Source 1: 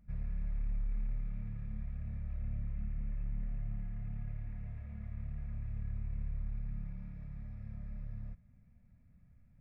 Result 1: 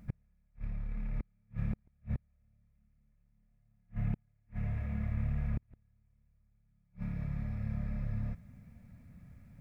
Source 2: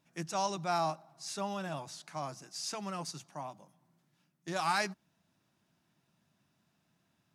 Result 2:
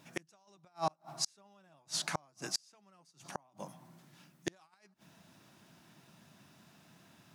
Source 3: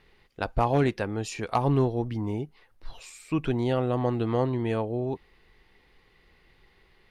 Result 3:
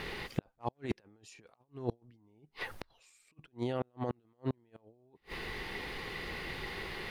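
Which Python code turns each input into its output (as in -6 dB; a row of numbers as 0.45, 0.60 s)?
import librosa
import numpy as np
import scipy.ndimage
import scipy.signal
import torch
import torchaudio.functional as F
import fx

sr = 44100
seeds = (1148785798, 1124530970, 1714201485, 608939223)

y = fx.over_compress(x, sr, threshold_db=-35.0, ratio=-0.5)
y = fx.gate_flip(y, sr, shuts_db=-32.0, range_db=-39)
y = fx.low_shelf(y, sr, hz=62.0, db=-12.0)
y = F.gain(torch.from_numpy(y), 12.5).numpy()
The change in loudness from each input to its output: +3.5, -3.5, -12.5 LU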